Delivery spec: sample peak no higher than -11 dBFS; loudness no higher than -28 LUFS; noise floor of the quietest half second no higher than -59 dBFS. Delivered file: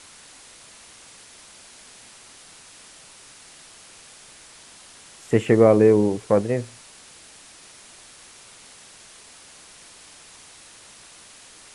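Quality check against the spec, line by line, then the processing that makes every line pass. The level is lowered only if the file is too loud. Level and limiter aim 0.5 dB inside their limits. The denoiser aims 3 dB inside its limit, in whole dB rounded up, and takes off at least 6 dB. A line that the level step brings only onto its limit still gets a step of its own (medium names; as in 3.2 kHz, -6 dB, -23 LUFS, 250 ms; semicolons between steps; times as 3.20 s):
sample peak -2.5 dBFS: fail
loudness -18.5 LUFS: fail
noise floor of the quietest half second -47 dBFS: fail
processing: noise reduction 6 dB, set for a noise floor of -47 dBFS; trim -10 dB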